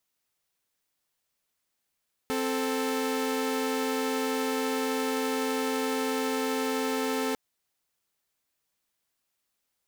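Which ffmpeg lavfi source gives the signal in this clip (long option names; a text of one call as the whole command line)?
ffmpeg -f lavfi -i "aevalsrc='0.0447*((2*mod(261.63*t,1)-1)+(2*mod(440*t,1)-1))':duration=5.05:sample_rate=44100" out.wav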